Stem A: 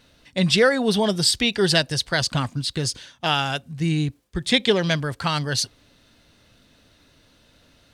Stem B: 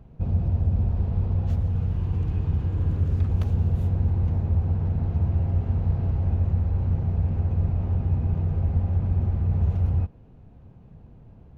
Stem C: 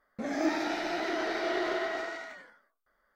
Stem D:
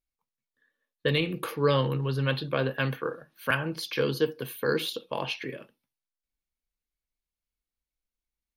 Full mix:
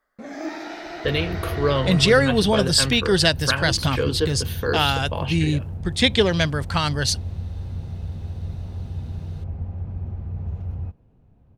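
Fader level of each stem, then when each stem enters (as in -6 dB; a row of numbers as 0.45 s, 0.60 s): +1.0 dB, -7.0 dB, -2.0 dB, +2.5 dB; 1.50 s, 0.85 s, 0.00 s, 0.00 s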